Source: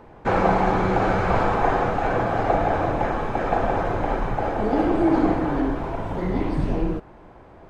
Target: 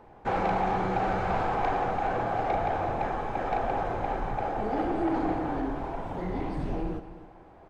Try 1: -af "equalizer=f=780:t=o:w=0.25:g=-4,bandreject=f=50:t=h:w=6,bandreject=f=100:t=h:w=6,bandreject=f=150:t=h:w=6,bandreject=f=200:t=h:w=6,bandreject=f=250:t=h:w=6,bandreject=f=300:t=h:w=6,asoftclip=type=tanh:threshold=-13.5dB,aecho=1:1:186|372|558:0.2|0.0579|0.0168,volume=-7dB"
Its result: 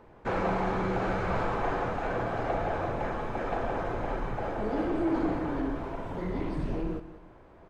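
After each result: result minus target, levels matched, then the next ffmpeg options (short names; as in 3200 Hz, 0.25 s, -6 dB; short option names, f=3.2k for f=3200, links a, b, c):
echo 69 ms early; 1000 Hz band -3.0 dB
-af "equalizer=f=780:t=o:w=0.25:g=-4,bandreject=f=50:t=h:w=6,bandreject=f=100:t=h:w=6,bandreject=f=150:t=h:w=6,bandreject=f=200:t=h:w=6,bandreject=f=250:t=h:w=6,bandreject=f=300:t=h:w=6,asoftclip=type=tanh:threshold=-13.5dB,aecho=1:1:255|510|765:0.2|0.0579|0.0168,volume=-7dB"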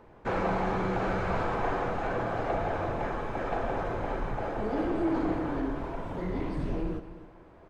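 1000 Hz band -3.0 dB
-af "equalizer=f=780:t=o:w=0.25:g=6.5,bandreject=f=50:t=h:w=6,bandreject=f=100:t=h:w=6,bandreject=f=150:t=h:w=6,bandreject=f=200:t=h:w=6,bandreject=f=250:t=h:w=6,bandreject=f=300:t=h:w=6,asoftclip=type=tanh:threshold=-13.5dB,aecho=1:1:255|510|765:0.2|0.0579|0.0168,volume=-7dB"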